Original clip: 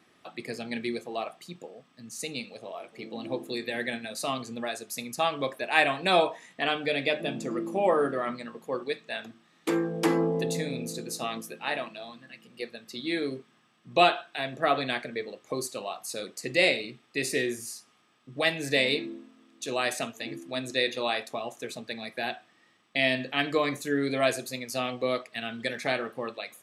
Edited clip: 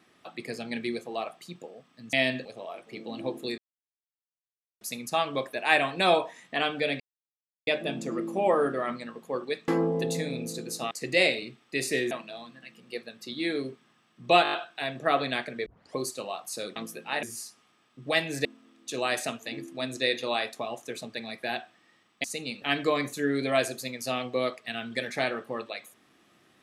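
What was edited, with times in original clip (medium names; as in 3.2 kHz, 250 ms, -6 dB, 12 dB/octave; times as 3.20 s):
2.13–2.51 s: swap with 22.98–23.30 s
3.64–4.87 s: mute
7.06 s: insert silence 0.67 s
9.07–10.08 s: delete
11.31–11.78 s: swap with 16.33–17.53 s
14.10 s: stutter 0.02 s, 6 plays
15.23 s: tape start 0.30 s
18.75–19.19 s: delete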